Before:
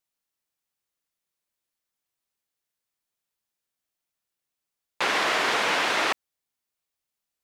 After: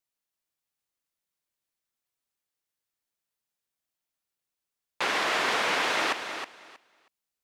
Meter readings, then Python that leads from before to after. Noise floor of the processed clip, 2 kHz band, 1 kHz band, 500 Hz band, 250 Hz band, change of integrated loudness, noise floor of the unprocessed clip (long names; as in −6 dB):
below −85 dBFS, −2.5 dB, −2.5 dB, −2.5 dB, −2.5 dB, −3.0 dB, below −85 dBFS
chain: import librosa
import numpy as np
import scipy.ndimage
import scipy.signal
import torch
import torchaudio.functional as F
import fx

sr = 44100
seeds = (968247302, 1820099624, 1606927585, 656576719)

y = fx.echo_feedback(x, sr, ms=318, feedback_pct=18, wet_db=-8.5)
y = y * librosa.db_to_amplitude(-3.0)